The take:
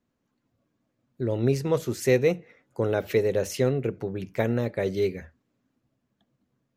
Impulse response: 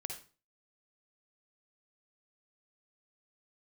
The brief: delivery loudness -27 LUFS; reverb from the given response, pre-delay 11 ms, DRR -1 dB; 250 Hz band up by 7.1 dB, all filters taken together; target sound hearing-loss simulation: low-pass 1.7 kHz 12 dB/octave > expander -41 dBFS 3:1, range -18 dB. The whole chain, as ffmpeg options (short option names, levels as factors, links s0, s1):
-filter_complex "[0:a]equalizer=f=250:t=o:g=9,asplit=2[s0][s1];[1:a]atrim=start_sample=2205,adelay=11[s2];[s1][s2]afir=irnorm=-1:irlink=0,volume=1.33[s3];[s0][s3]amix=inputs=2:normalize=0,lowpass=1700,agate=range=0.126:threshold=0.00891:ratio=3,volume=0.447"